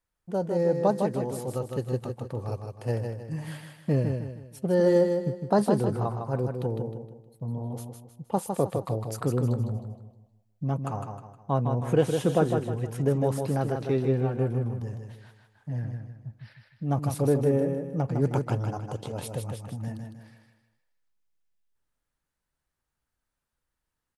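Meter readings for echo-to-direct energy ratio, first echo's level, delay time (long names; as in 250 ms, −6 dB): −5.0 dB, −5.5 dB, 156 ms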